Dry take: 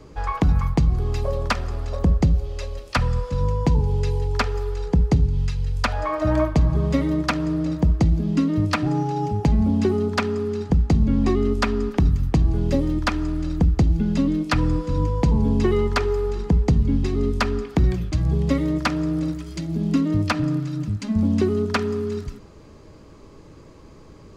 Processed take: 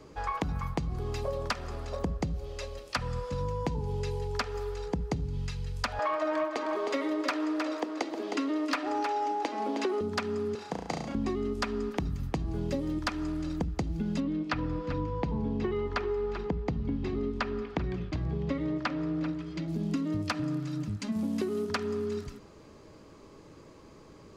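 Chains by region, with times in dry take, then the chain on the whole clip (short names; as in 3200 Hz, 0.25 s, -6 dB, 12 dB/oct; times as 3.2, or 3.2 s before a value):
5.99–10.01 steep high-pass 270 Hz 48 dB/oct + overdrive pedal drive 15 dB, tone 3300 Hz, clips at -8 dBFS + echo 0.312 s -8.5 dB
10.55–11.15 HPF 190 Hz + resonant low shelf 470 Hz -7 dB, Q 1.5 + flutter echo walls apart 6 m, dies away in 0.67 s
14.2–19.68 LPF 3500 Hz + echo 0.388 s -14.5 dB
21.12–21.7 CVSD 64 kbps + HPF 170 Hz
whole clip: low shelf 120 Hz -10.5 dB; compressor, threshold -24 dBFS; gain -3.5 dB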